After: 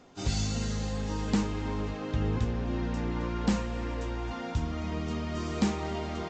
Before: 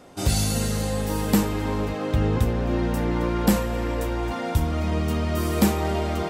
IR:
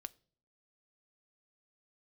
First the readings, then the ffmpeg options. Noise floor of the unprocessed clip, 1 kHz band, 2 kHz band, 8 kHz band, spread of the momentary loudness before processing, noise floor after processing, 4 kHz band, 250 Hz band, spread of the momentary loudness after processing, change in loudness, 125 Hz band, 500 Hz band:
-29 dBFS, -8.5 dB, -7.5 dB, -10.5 dB, 5 LU, -37 dBFS, -7.0 dB, -7.0 dB, 5 LU, -8.0 dB, -7.5 dB, -9.5 dB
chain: -filter_complex "[0:a]equalizer=f=570:t=o:w=0.48:g=-4.5,areverse,acompressor=mode=upward:threshold=-29dB:ratio=2.5,areverse[a];[1:a]atrim=start_sample=2205[b];[a][b]afir=irnorm=-1:irlink=0,aresample=16000,aresample=44100,volume=-2.5dB" -ar 32000 -c:a libvorbis -b:a 48k

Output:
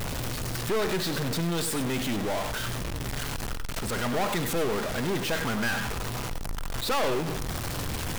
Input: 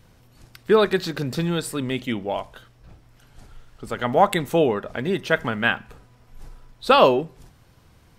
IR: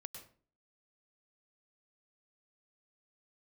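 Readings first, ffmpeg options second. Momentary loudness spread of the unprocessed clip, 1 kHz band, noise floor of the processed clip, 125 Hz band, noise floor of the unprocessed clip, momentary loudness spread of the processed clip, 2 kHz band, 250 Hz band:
14 LU, -8.5 dB, -33 dBFS, -0.5 dB, -55 dBFS, 6 LU, -5.0 dB, -4.5 dB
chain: -filter_complex "[0:a]aeval=exprs='val(0)+0.5*0.141*sgn(val(0))':c=same[a];[1:a]atrim=start_sample=2205,afade=t=out:st=0.15:d=0.01,atrim=end_sample=7056[b];[a][b]afir=irnorm=-1:irlink=0,aeval=exprs='(tanh(15.8*val(0)+0.6)-tanh(0.6))/15.8':c=same"

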